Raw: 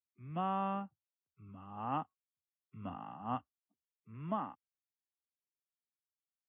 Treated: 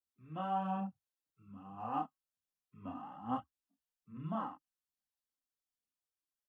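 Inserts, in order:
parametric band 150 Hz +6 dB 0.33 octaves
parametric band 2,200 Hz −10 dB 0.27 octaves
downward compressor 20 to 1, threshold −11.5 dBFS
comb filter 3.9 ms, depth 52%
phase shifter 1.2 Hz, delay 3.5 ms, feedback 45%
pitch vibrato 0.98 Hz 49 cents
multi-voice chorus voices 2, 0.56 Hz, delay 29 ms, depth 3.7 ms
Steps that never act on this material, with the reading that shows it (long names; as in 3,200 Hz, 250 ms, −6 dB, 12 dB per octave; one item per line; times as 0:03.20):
downward compressor, threshold −11.5 dBFS: peak of its input −23.0 dBFS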